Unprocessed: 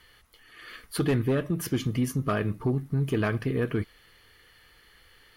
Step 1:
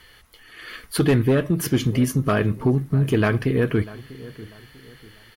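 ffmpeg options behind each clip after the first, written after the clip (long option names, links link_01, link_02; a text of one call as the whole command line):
ffmpeg -i in.wav -filter_complex "[0:a]bandreject=frequency=1200:width=21,asplit=2[link_01][link_02];[link_02]adelay=644,lowpass=frequency=1700:poles=1,volume=-18dB,asplit=2[link_03][link_04];[link_04]adelay=644,lowpass=frequency=1700:poles=1,volume=0.36,asplit=2[link_05][link_06];[link_06]adelay=644,lowpass=frequency=1700:poles=1,volume=0.36[link_07];[link_01][link_03][link_05][link_07]amix=inputs=4:normalize=0,volume=7dB" out.wav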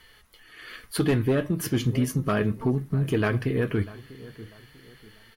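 ffmpeg -i in.wav -af "flanger=delay=4.4:depth=6:regen=71:speed=0.38:shape=sinusoidal" out.wav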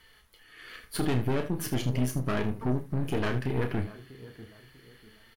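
ffmpeg -i in.wav -af "aeval=exprs='(tanh(15.8*val(0)+0.75)-tanh(0.75))/15.8':channel_layout=same,aecho=1:1:32|78:0.398|0.211" out.wav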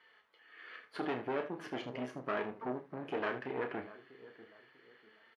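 ffmpeg -i in.wav -af "highpass=430,lowpass=2200,volume=-2dB" out.wav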